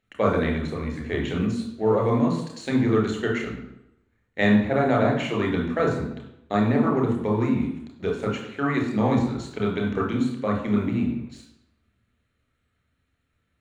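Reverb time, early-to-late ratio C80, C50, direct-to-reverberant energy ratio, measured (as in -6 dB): 0.85 s, 8.5 dB, 5.0 dB, 0.0 dB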